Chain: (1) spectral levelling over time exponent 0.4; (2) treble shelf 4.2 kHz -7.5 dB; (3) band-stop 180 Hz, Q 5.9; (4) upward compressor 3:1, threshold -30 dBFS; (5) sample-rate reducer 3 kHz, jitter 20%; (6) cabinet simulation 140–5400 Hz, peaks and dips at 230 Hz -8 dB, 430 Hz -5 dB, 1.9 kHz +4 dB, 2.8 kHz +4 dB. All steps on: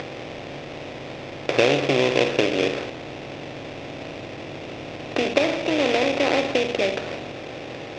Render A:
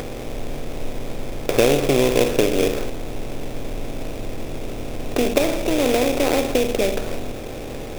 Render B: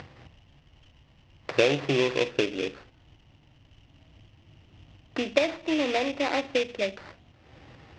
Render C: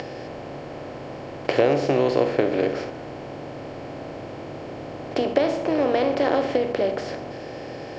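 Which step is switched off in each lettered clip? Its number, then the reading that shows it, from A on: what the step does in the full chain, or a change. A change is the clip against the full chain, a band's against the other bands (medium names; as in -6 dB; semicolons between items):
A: 6, crest factor change -6.0 dB; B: 1, crest factor change +2.5 dB; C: 5, distortion -5 dB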